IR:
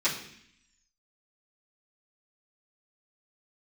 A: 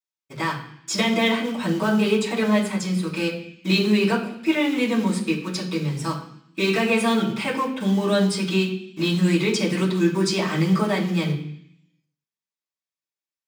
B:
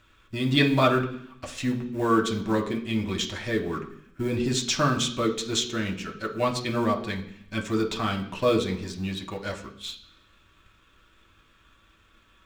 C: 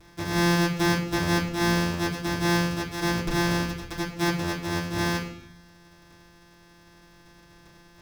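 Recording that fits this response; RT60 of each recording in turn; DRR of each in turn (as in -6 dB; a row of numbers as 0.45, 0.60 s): A; 0.65, 0.65, 0.65 s; -12.5, 1.0, -7.5 dB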